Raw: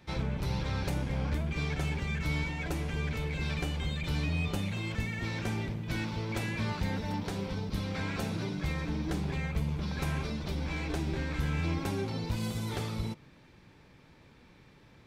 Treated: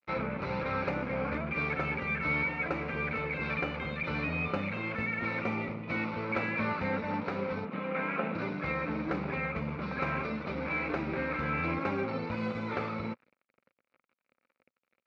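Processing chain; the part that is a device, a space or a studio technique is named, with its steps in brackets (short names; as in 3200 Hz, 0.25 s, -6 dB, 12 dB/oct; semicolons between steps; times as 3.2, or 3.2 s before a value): 7.65–8.35 elliptic band-pass 150–3100 Hz; blown loudspeaker (crossover distortion -50.5 dBFS; speaker cabinet 130–3800 Hz, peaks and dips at 130 Hz -5 dB, 240 Hz +5 dB, 530 Hz +9 dB, 1300 Hz +9 dB, 2300 Hz +9 dB, 3300 Hz -10 dB); 5.4–6.14 notch 1600 Hz, Q 5.1; dynamic EQ 1100 Hz, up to +4 dB, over -50 dBFS, Q 1.1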